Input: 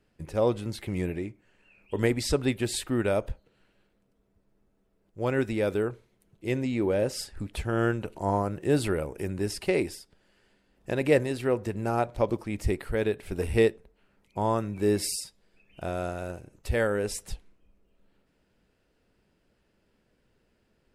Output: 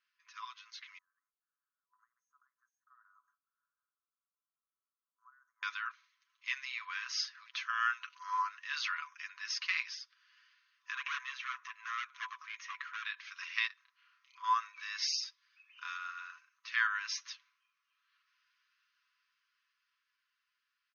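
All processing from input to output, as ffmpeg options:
-filter_complex "[0:a]asettb=1/sr,asplit=3[a][b][c];[a]atrim=end=0.984[d];[b]atrim=start=0.98:end=5.63,asetpts=PTS-STARTPTS,afade=t=in:d=0.004:c=qsin,afade=t=out:st=4.646:d=0.004:c=qsin,aderivative,acompressor=threshold=-52dB:ratio=8:attack=3.2:release=140:knee=1:detection=peak,asuperstop=centerf=3500:order=12:qfactor=0.52[e];[c]atrim=start=5.626[f];[d][e]acrossfade=d=0.004:c1=hsin:c2=qsin[g];[g][f]acrossfade=d=0.004:c1=qsin:c2=hsin,asettb=1/sr,asplit=3[h][i][j];[h]atrim=end=10.924[k];[i]atrim=start=10.92:end=13.05,asetpts=PTS-STARTPTS,afade=t=in:d=0.004:c=qsin,afade=t=out:st=2.126:d=0.004:c=qsin,highpass=200,asoftclip=type=hard:threshold=-27dB,equalizer=f=4.7k:w=2.9:g=-12.5[l];[j]atrim=start=13.046[m];[k][l]acrossfade=d=0.004:c1=hsin:c2=qsin[n];[n][m]acrossfade=d=0.004:c1=qsin:c2=hsin,asettb=1/sr,asplit=3[o][p][q];[o]atrim=end=13.674[r];[p]atrim=start=13.67:end=14.44,asetpts=PTS-STARTPTS,afade=t=in:d=0.004:c=qsin,afade=t=out:st=0.766:d=0.004:c=qsin,highpass=f=660:w=0.5412,highpass=f=660:w=1.3066,acompressor=threshold=-54dB:ratio=2:attack=3.2:release=140:knee=1:detection=peak,asplit=2[s][t];[t]adelay=31,volume=-2.5dB[u];[s][u]amix=inputs=2:normalize=0,atrim=end_sample=33957[v];[q]atrim=start=14.436[w];[r][v]acrossfade=d=0.004:c1=hsin:c2=qsin[x];[x][w]acrossfade=d=0.004:c1=qsin:c2=hsin,asettb=1/sr,asplit=3[y][z][aa];[y]atrim=end=15.974[ab];[z]atrim=start=15.97:end=16.68,asetpts=PTS-STARTPTS,afade=t=in:d=0.004:c=qsin,afade=t=out:st=0.706:d=0.004:c=qsin,lowpass=7.5k,highshelf=f=2.5k:g=-8[ac];[aa]atrim=start=16.676[ad];[ab][ac]acrossfade=d=0.004:c1=hsin:c2=qsin[ae];[ae][ad]acrossfade=d=0.004:c1=qsin:c2=hsin,dynaudnorm=f=540:g=9:m=9dB,afftfilt=real='re*between(b*sr/4096,1000,6600)':imag='im*between(b*sr/4096,1000,6600)':win_size=4096:overlap=0.75,aecho=1:1:7:0.52,volume=-7dB"

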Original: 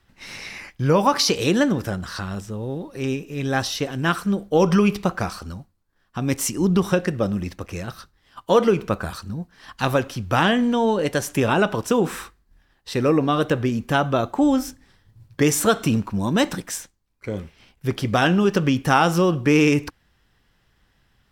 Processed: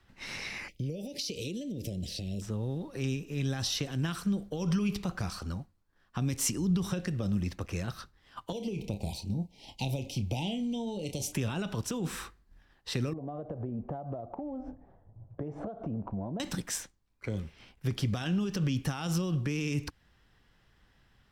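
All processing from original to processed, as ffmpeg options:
-filter_complex "[0:a]asettb=1/sr,asplit=3[a][b][c];[a]atrim=end=0.684[d];[b]atrim=start=0.68:end=2.42,asetpts=PTS-STARTPTS,afade=t=in:d=0.004:c=qsin,afade=t=out:st=1.736:d=0.004:c=qsin,highshelf=f=11k:g=6,acompressor=threshold=-28dB:ratio=10:attack=3.2:release=140:knee=1:detection=peak,asuperstop=centerf=1200:order=8:qfactor=0.66[e];[c]atrim=start=2.416[f];[d][e]acrossfade=d=0.004:c1=hsin:c2=qsin[g];[g][f]acrossfade=d=0.004:c1=qsin:c2=hsin,asettb=1/sr,asplit=3[h][i][j];[h]atrim=end=8.524[k];[i]atrim=start=8.52:end=11.33,asetpts=PTS-STARTPTS,afade=t=in:d=0.004:c=qsin,afade=t=out:st=2.806:d=0.004:c=qsin,asuperstop=centerf=1400:order=12:qfactor=1.1,asplit=2[l][m];[m]adelay=30,volume=-11dB[n];[l][n]amix=inputs=2:normalize=0,atrim=end_sample=123921,acompressor=threshold=-23dB:ratio=4:attack=3.2:release=140:knee=1:detection=peak[o];[j]atrim=start=11.326[p];[k][o]acrossfade=d=0.004:c1=hsin:c2=qsin[q];[q][p]acrossfade=d=0.004:c1=qsin:c2=hsin,asettb=1/sr,asplit=3[r][s][t];[r]atrim=end=13.134[u];[s]atrim=start=13.13:end=16.4,asetpts=PTS-STARTPTS,afade=t=in:d=0.004:c=qsin,afade=t=out:st=3.266:d=0.004:c=qsin,lowpass=f=680:t=q:w=4.3,acompressor=threshold=-29dB:ratio=5:attack=3.2:release=140:knee=1:detection=peak[v];[t]atrim=start=16.396[w];[u][v]acrossfade=d=0.004:c1=hsin:c2=qsin[x];[x][w]acrossfade=d=0.004:c1=qsin:c2=hsin,highshelf=f=8.3k:g=-7,alimiter=limit=-15.5dB:level=0:latency=1:release=45,acrossover=split=200|3000[y][z][aa];[z]acompressor=threshold=-36dB:ratio=6[ab];[y][ab][aa]amix=inputs=3:normalize=0,volume=-2dB"

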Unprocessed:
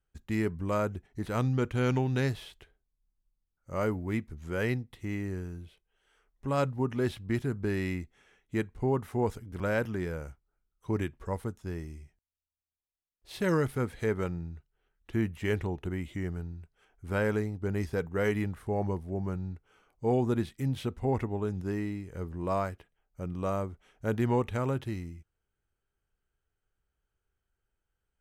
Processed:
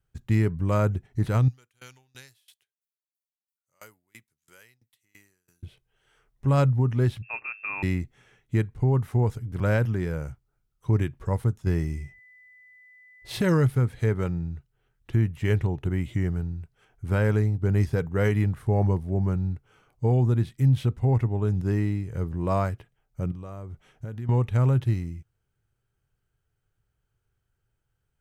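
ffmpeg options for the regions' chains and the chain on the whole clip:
-filter_complex "[0:a]asettb=1/sr,asplit=3[a][b][c];[a]atrim=end=1.484[d];[b]atrim=start=1.48:end=5.63,asetpts=PTS-STARTPTS,afade=t=in:d=0.004:c=qsin,afade=t=out:st=4.146:d=0.004:c=qsin,aderivative,aeval=exprs='val(0)*pow(10,-26*if(lt(mod(3*n/s,1),2*abs(3)/1000),1-mod(3*n/s,1)/(2*abs(3)/1000),(mod(3*n/s,1)-2*abs(3)/1000)/(1-2*abs(3)/1000))/20)':c=same[e];[c]atrim=start=5.626[f];[d][e]acrossfade=d=0.004:c1=hsin:c2=qsin[g];[g][f]acrossfade=d=0.004:c1=qsin:c2=hsin,asettb=1/sr,asplit=3[h][i][j];[h]atrim=end=7.224[k];[i]atrim=start=7.22:end=7.83,asetpts=PTS-STARTPTS,afade=t=in:d=0.004:c=qsin,afade=t=out:st=0.606:d=0.004:c=qsin,highpass=f=540:p=1,lowpass=f=2.4k:t=q:w=0.5098,lowpass=f=2.4k:t=q:w=0.6013,lowpass=f=2.4k:t=q:w=0.9,lowpass=f=2.4k:t=q:w=2.563,afreqshift=-2800[l];[j]atrim=start=7.826[m];[k][l]acrossfade=d=0.004:c1=hsin:c2=qsin[n];[n][m]acrossfade=d=0.004:c1=qsin:c2=hsin,asettb=1/sr,asplit=3[o][p][q];[o]atrim=end=11.664[r];[p]atrim=start=11.66:end=13.42,asetpts=PTS-STARTPTS,afade=t=in:d=0.004:c=qsin,afade=t=out:st=1.756:d=0.004:c=qsin,aeval=exprs='val(0)+0.001*sin(2*PI*2000*n/s)':c=same,acontrast=33[s];[q]atrim=start=13.416[t];[r][s]acrossfade=d=0.004:c1=hsin:c2=qsin[u];[u][t]acrossfade=d=0.004:c1=qsin:c2=hsin,asettb=1/sr,asplit=3[v][w][x];[v]atrim=end=23.314[y];[w]atrim=start=23.31:end=24.29,asetpts=PTS-STARTPTS,afade=t=in:d=0.004:c=qsin,afade=t=out:st=0.976:d=0.004:c=qsin,acompressor=threshold=-43dB:ratio=5:attack=3.2:release=140:knee=1:detection=peak,asplit=2[z][aa];[aa]adelay=13,volume=-14dB[ab];[z][ab]amix=inputs=2:normalize=0,atrim=end_sample=43218[ac];[x]atrim=start=24.286[ad];[y][ac]acrossfade=d=0.004:c1=hsin:c2=qsin[ae];[ae][ad]acrossfade=d=0.004:c1=qsin:c2=hsin,equalizer=f=120:w=2:g=14,alimiter=limit=-16.5dB:level=0:latency=1:release=459,volume=3.5dB"

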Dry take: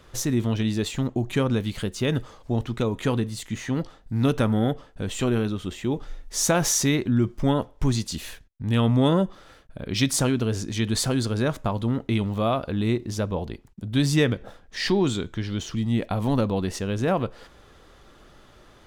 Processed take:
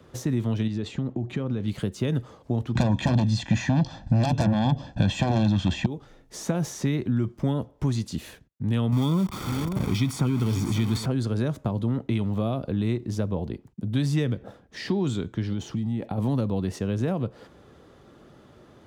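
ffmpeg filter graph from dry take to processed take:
-filter_complex "[0:a]asettb=1/sr,asplit=3[a][b][c];[a]atrim=end=0.674[d];[b]atrim=start=0.67:end=1.68,asetpts=PTS-STARTPTS,afade=t=in:d=0.004:c=qsin,afade=t=out:st=1.006:d=0.004:c=qsin,lowpass=5.4k,bandreject=f=970:w=16,acompressor=threshold=-25dB:ratio=6:attack=3.2:release=140:knee=1:detection=peak[e];[c]atrim=start=1.676[f];[d][e]acrossfade=d=0.004:c1=hsin:c2=qsin[g];[g][f]acrossfade=d=0.004:c1=qsin:c2=hsin,asettb=1/sr,asplit=3[h][i][j];[h]atrim=end=2.754[k];[i]atrim=start=2.75:end=5.86,asetpts=PTS-STARTPTS,afade=t=in:d=0.004:c=qsin,afade=t=out:st=3.106:d=0.004:c=qsin,lowpass=f=6.1k:w=0.5412,lowpass=f=6.1k:w=1.3066,aeval=exprs='0.422*sin(PI/2*5.01*val(0)/0.422)':c=same,aecho=1:1:1.2:0.89,atrim=end_sample=137151[l];[j]atrim=start=5.856[m];[k][l]acrossfade=d=0.004:c1=hsin:c2=qsin[n];[n][m]acrossfade=d=0.004:c1=qsin:c2=hsin,asettb=1/sr,asplit=3[o][p][q];[o]atrim=end=8.924[r];[p]atrim=start=8.92:end=11.06,asetpts=PTS-STARTPTS,afade=t=in:d=0.004:c=qsin,afade=t=out:st=2.136:d=0.004:c=qsin,aeval=exprs='val(0)+0.5*0.0562*sgn(val(0))':c=same,aecho=1:1:0.9:0.61,atrim=end_sample=94374,aecho=1:1:543:0.168,atrim=end_sample=94374[s];[q]atrim=start=11.056[t];[r][s]acrossfade=d=0.004:c1=hsin:c2=qsin[u];[u][t]acrossfade=d=0.004:c1=qsin:c2=hsin,asettb=1/sr,asplit=3[v][w][x];[v]atrim=end=15.524[y];[w]atrim=start=15.52:end=16.18,asetpts=PTS-STARTPTS,afade=t=in:d=0.004:c=qsin,afade=t=out:st=0.656:d=0.004:c=qsin,equalizer=f=820:w=7.3:g=10,acompressor=threshold=-27dB:ratio=4:attack=3.2:release=140:knee=1:detection=peak[z];[x]atrim=start=16.176[aa];[y][z]acrossfade=d=0.004:c1=hsin:c2=qsin[ab];[ab][aa]acrossfade=d=0.004:c1=qsin:c2=hsin,highpass=110,tiltshelf=f=710:g=6.5,acrossover=split=140|630|3300[ac][ad][ae][af];[ac]acompressor=threshold=-27dB:ratio=4[ag];[ad]acompressor=threshold=-28dB:ratio=4[ah];[ae]acompressor=threshold=-37dB:ratio=4[ai];[af]acompressor=threshold=-40dB:ratio=4[aj];[ag][ah][ai][aj]amix=inputs=4:normalize=0"

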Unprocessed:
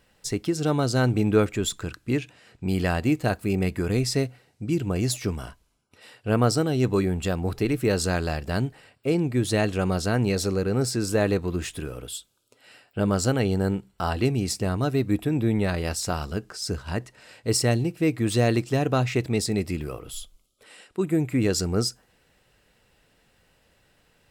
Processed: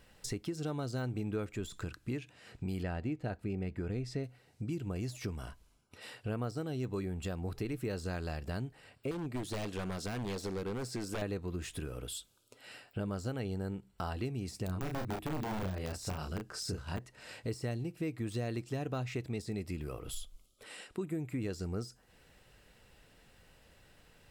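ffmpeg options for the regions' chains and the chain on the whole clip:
-filter_complex "[0:a]asettb=1/sr,asplit=3[a][b][c];[a]atrim=end=2.834[d];[b]atrim=start=2.83:end=4.24,asetpts=PTS-STARTPTS,afade=t=in:d=0.004:c=qsin,afade=t=out:st=1.406:d=0.004:c=qsin,aemphasis=mode=reproduction:type=75fm,bandreject=f=1.1k:w=6.4[e];[c]atrim=start=4.236[f];[d][e]acrossfade=d=0.004:c1=hsin:c2=qsin[g];[g][f]acrossfade=d=0.004:c1=qsin:c2=hsin,asettb=1/sr,asplit=3[h][i][j];[h]atrim=end=9.114[k];[i]atrim=start=9.11:end=11.22,asetpts=PTS-STARTPTS,afade=t=in:d=0.004:c=qsin,afade=t=out:st=2.106:d=0.004:c=qsin,equalizer=f=73:t=o:w=1.2:g=-11.5,aeval=exprs='0.0841*(abs(mod(val(0)/0.0841+3,4)-2)-1)':c=same[l];[j]atrim=start=11.216[m];[k][l]acrossfade=d=0.004:c1=hsin:c2=qsin[n];[n][m]acrossfade=d=0.004:c1=qsin:c2=hsin,asettb=1/sr,asplit=3[o][p][q];[o]atrim=end=14.664[r];[p]atrim=start=14.66:end=16.99,asetpts=PTS-STARTPTS,afade=t=in:d=0.004:c=qsin,afade=t=out:st=2.326:d=0.004:c=qsin,aeval=exprs='(mod(7.08*val(0)+1,2)-1)/7.08':c=same,asplit=2[s][t];[t]adelay=32,volume=-4dB[u];[s][u]amix=inputs=2:normalize=0,atrim=end_sample=102753[v];[q]atrim=start=16.986[w];[r][v]acrossfade=d=0.004:c1=hsin:c2=qsin[x];[x][w]acrossfade=d=0.004:c1=qsin:c2=hsin,deesser=0.65,lowshelf=f=79:g=5.5,acompressor=threshold=-39dB:ratio=3"

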